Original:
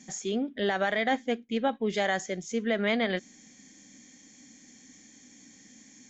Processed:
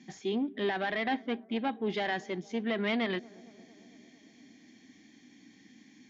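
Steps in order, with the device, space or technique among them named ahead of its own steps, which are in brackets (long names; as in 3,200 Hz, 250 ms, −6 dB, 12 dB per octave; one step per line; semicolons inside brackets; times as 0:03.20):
0:00.92–0:01.56: high-frequency loss of the air 73 metres
analogue delay pedal into a guitar amplifier (bucket-brigade delay 227 ms, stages 2,048, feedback 68%, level −24 dB; tube saturation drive 21 dB, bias 0.35; loudspeaker in its box 84–4,400 Hz, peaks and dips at 340 Hz +6 dB, 540 Hz −9 dB, 1,300 Hz −5 dB)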